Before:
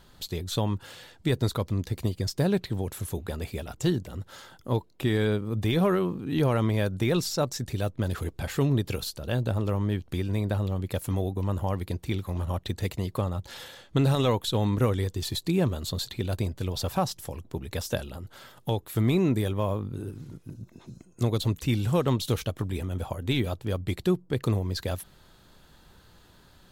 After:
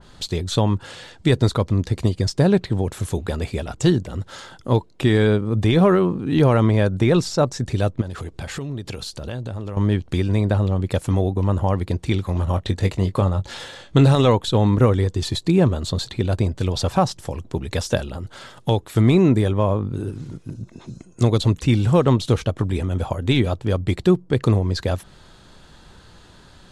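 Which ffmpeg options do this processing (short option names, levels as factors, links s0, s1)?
-filter_complex "[0:a]asettb=1/sr,asplit=3[s0][s1][s2];[s0]atrim=end=8.014[s3];[s1]atrim=start=8.01:end=9.77,asetpts=PTS-STARTPTS,afade=t=in:d=0.004:c=qsin,afade=t=out:st=1.756:d=0.004:c=qsin,acompressor=threshold=0.0178:ratio=6:attack=3.2:release=140:knee=1:detection=peak[s4];[s2]atrim=start=9.766[s5];[s3][s4]acrossfade=d=0.004:c1=hsin:c2=qsin[s6];[s6][s5]acrossfade=d=0.004:c1=qsin:c2=hsin,asettb=1/sr,asplit=3[s7][s8][s9];[s7]atrim=end=12.554[s10];[s8]atrim=start=12.55:end=14.07,asetpts=PTS-STARTPTS,afade=t=in:d=0.004:c=qsin,afade=t=out:st=1.516:d=0.004:c=qsin,asplit=2[s11][s12];[s12]adelay=21,volume=0.316[s13];[s11][s13]amix=inputs=2:normalize=0,atrim=end_sample=67032[s14];[s9]atrim=start=14.066[s15];[s10][s14]acrossfade=d=0.004:c1=hsin:c2=qsin[s16];[s16][s15]acrossfade=d=0.004:c1=qsin:c2=hsin,lowpass=f=9400:w=0.5412,lowpass=f=9400:w=1.3066,adynamicequalizer=threshold=0.00501:dfrequency=2000:dqfactor=0.7:tfrequency=2000:tqfactor=0.7:attack=5:release=100:ratio=0.375:range=3.5:mode=cutabove:tftype=highshelf,volume=2.66"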